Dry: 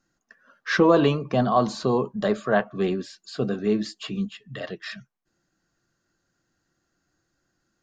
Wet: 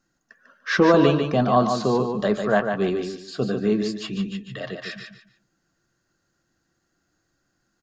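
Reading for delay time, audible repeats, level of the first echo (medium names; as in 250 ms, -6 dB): 147 ms, 3, -6.0 dB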